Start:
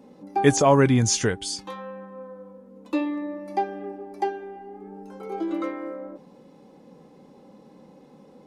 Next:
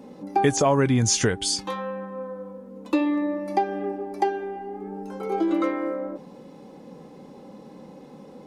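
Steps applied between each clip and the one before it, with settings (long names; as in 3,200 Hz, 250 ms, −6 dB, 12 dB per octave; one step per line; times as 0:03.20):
downward compressor 4 to 1, threshold −24 dBFS, peak gain reduction 11 dB
level +6 dB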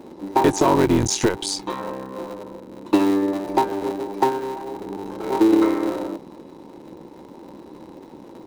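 sub-harmonics by changed cycles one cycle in 3, muted
hollow resonant body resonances 340/920/3,900 Hz, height 12 dB, ringing for 35 ms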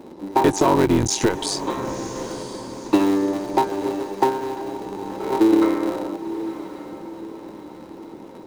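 feedback delay with all-pass diffusion 997 ms, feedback 46%, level −12.5 dB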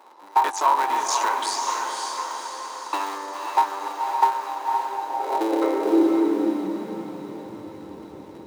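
feedback delay with all-pass diffusion 542 ms, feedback 41%, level −3.5 dB
high-pass filter sweep 990 Hz → 70 Hz, 0:04.79–0:08.11
level −4 dB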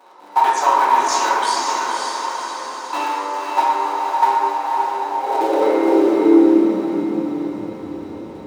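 convolution reverb RT60 2.1 s, pre-delay 4 ms, DRR −6 dB
level −1 dB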